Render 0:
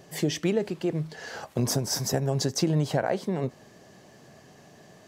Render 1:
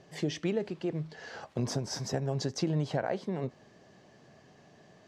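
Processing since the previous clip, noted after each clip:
low-pass filter 5,400 Hz 12 dB per octave
level −5.5 dB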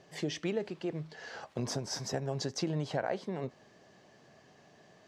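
low-shelf EQ 340 Hz −5.5 dB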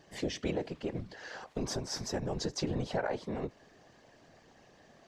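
random phases in short frames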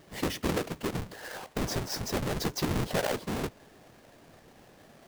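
each half-wave held at its own peak

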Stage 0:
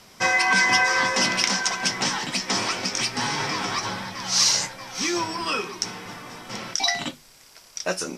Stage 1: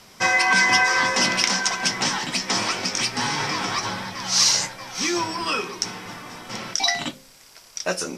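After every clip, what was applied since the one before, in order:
hum removal 66.1 Hz, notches 11
level +1.5 dB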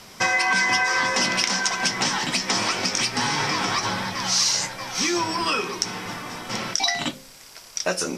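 downward compressor 2.5 to 1, threshold −25 dBFS, peak gain reduction 8 dB
level +4 dB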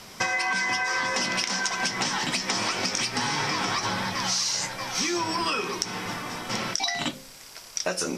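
downward compressor, threshold −23 dBFS, peak gain reduction 7 dB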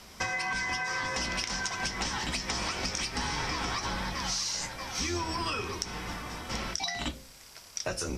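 sub-octave generator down 2 octaves, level +2 dB
level −6 dB

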